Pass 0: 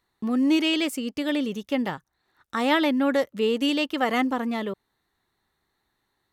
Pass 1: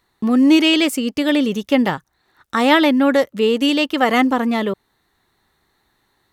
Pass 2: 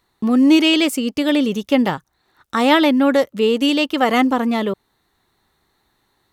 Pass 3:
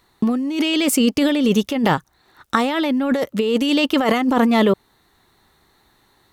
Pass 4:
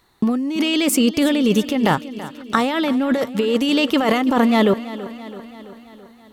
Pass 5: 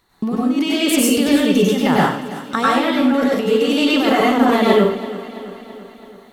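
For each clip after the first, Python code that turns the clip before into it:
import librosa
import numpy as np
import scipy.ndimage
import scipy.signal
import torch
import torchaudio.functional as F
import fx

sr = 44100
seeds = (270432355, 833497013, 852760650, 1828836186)

y1 = fx.rider(x, sr, range_db=10, speed_s=2.0)
y1 = y1 * 10.0 ** (7.5 / 20.0)
y2 = fx.peak_eq(y1, sr, hz=1800.0, db=-3.0, octaves=0.49)
y3 = fx.over_compress(y2, sr, threshold_db=-20.0, ratio=-1.0)
y3 = y3 * 10.0 ** (2.5 / 20.0)
y4 = fx.echo_feedback(y3, sr, ms=332, feedback_pct=60, wet_db=-15.5)
y5 = fx.rev_plate(y4, sr, seeds[0], rt60_s=0.51, hf_ratio=0.95, predelay_ms=85, drr_db=-6.0)
y5 = y5 * 10.0 ** (-3.5 / 20.0)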